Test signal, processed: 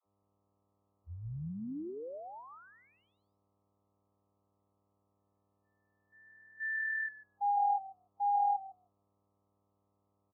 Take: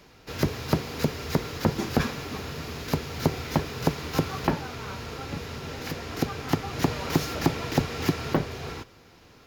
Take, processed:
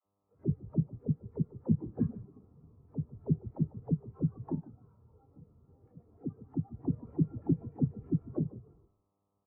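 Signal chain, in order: HPF 73 Hz 12 dB/oct; high shelf 2300 Hz -9.5 dB; buzz 100 Hz, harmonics 13, -43 dBFS -1 dB/oct; air absorption 240 m; dispersion lows, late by 64 ms, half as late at 340 Hz; frequency-shifting echo 0.148 s, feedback 31%, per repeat -40 Hz, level -7 dB; spectral expander 2.5:1; gain -1.5 dB

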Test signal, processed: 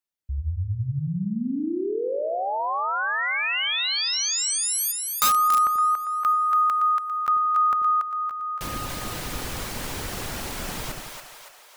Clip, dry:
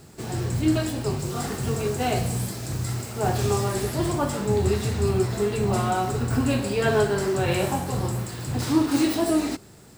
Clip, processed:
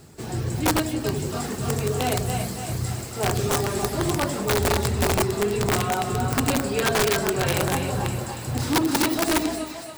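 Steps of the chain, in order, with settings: reverb removal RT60 0.53 s; split-band echo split 540 Hz, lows 87 ms, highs 0.283 s, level -4 dB; wrapped overs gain 14.5 dB

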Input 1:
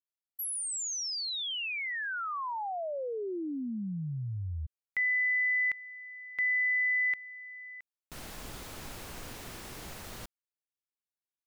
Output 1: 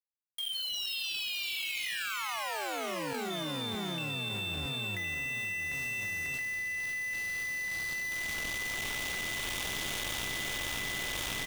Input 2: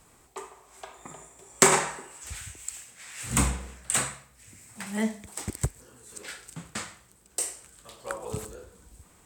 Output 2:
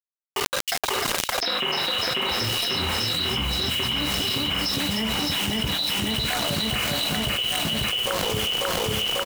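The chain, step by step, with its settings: nonlinear frequency compression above 2100 Hz 4:1; requantised 6-bit, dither none; feedback echo 0.543 s, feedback 59%, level -4 dB; echoes that change speed 0.258 s, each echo +5 st, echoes 2; random-step tremolo; split-band echo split 2800 Hz, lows 0.6 s, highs 0.315 s, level -14 dB; fast leveller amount 100%; gain -11.5 dB

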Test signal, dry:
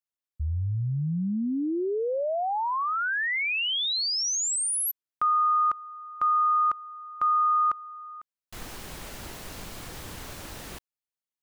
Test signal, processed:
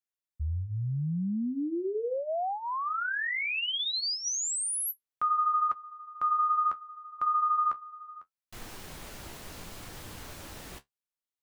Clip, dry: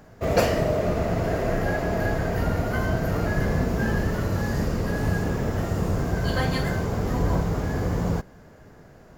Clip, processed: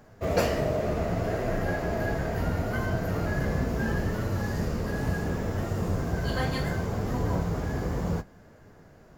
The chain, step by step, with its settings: flange 0.7 Hz, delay 8.2 ms, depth 7.4 ms, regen -46%

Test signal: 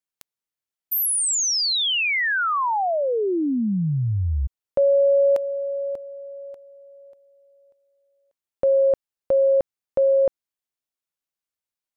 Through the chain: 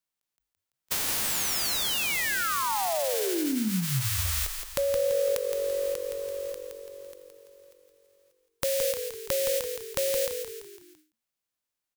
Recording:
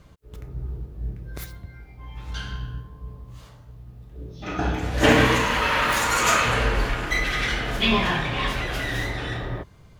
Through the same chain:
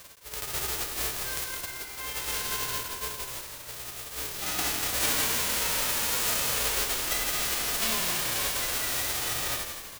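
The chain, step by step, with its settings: spectral whitening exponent 0.1; compressor 3:1, threshold -31 dBFS; frequency-shifting echo 0.168 s, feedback 46%, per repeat -47 Hz, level -7 dB; ending taper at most 160 dB/s; gain +2 dB

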